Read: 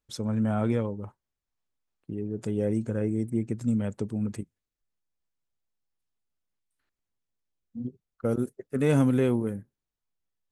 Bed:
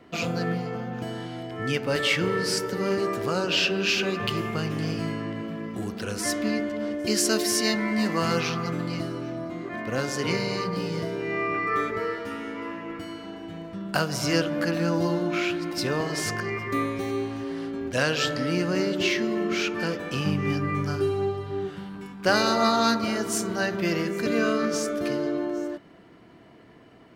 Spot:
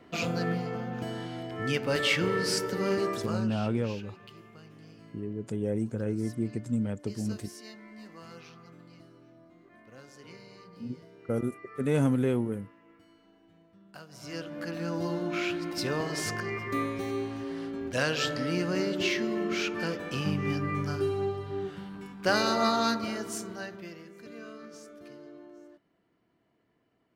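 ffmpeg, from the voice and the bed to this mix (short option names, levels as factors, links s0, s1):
-filter_complex "[0:a]adelay=3050,volume=0.708[s0];[1:a]volume=6.68,afade=t=out:st=3.03:d=0.52:silence=0.0944061,afade=t=in:st=14.08:d=1.44:silence=0.112202,afade=t=out:st=22.69:d=1.27:silence=0.141254[s1];[s0][s1]amix=inputs=2:normalize=0"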